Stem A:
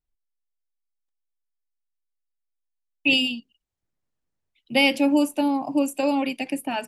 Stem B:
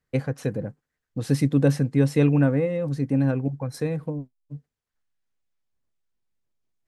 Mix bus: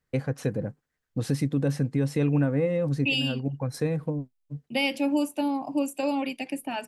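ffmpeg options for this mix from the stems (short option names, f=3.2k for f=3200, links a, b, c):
-filter_complex "[0:a]agate=range=-33dB:threshold=-50dB:ratio=3:detection=peak,volume=-4.5dB,asplit=2[a][b];[1:a]volume=0.5dB[c];[b]apad=whole_len=303288[d];[c][d]sidechaincompress=threshold=-29dB:ratio=8:attack=6.7:release=579[e];[a][e]amix=inputs=2:normalize=0,alimiter=limit=-15.5dB:level=0:latency=1:release=247"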